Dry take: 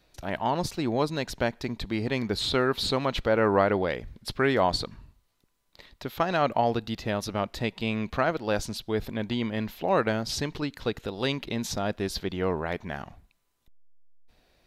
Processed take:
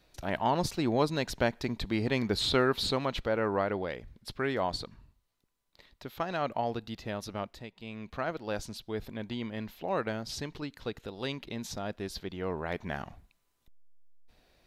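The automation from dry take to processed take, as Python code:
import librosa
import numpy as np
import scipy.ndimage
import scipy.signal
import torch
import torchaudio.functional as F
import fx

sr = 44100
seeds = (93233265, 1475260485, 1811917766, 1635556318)

y = fx.gain(x, sr, db=fx.line((2.59, -1.0), (3.52, -7.5), (7.43, -7.5), (7.69, -17.0), (8.3, -7.5), (12.44, -7.5), (12.89, -1.0)))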